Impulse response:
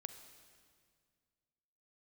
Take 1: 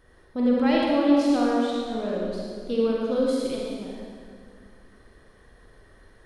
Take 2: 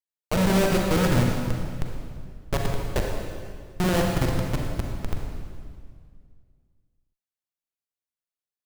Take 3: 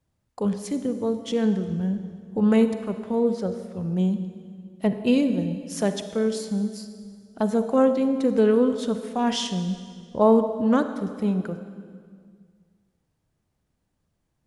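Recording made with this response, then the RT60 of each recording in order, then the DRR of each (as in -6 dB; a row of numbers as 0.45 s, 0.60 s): 3; 2.0 s, 2.0 s, 2.0 s; -4.0 dB, 0.0 dB, 9.0 dB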